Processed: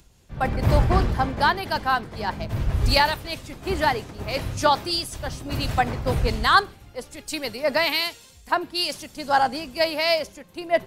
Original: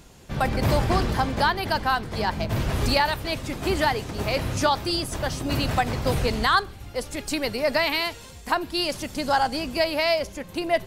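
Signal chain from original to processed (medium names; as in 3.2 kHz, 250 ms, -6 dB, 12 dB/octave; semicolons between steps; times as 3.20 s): upward compressor, threshold -30 dBFS; three bands expanded up and down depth 100%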